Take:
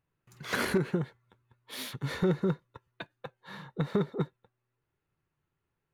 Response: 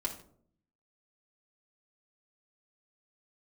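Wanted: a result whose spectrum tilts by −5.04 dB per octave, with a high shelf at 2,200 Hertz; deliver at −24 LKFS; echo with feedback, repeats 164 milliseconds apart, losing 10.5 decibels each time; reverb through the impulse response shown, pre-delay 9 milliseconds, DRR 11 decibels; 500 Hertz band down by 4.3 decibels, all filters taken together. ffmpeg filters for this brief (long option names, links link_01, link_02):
-filter_complex "[0:a]equalizer=frequency=500:width_type=o:gain=-6.5,highshelf=frequency=2200:gain=4,aecho=1:1:164|328|492:0.299|0.0896|0.0269,asplit=2[link_01][link_02];[1:a]atrim=start_sample=2205,adelay=9[link_03];[link_02][link_03]afir=irnorm=-1:irlink=0,volume=-13.5dB[link_04];[link_01][link_04]amix=inputs=2:normalize=0,volume=9dB"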